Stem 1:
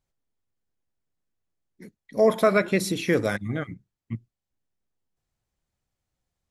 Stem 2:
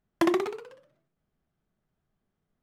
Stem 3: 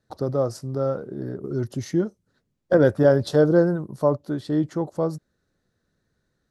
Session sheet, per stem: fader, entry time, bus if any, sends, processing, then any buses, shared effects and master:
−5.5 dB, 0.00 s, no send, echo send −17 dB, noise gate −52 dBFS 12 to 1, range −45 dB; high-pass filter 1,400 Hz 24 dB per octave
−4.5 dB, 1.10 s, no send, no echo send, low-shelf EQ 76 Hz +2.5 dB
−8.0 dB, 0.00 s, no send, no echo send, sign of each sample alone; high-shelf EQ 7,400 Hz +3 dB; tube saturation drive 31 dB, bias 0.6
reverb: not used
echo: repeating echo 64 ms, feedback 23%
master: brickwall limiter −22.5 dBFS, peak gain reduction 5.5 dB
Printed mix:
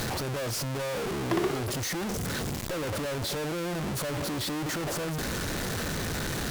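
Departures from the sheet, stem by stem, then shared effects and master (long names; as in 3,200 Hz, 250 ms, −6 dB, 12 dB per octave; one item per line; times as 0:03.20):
stem 1: muted
stem 3 −8.0 dB → 0.0 dB
master: missing brickwall limiter −22.5 dBFS, peak gain reduction 5.5 dB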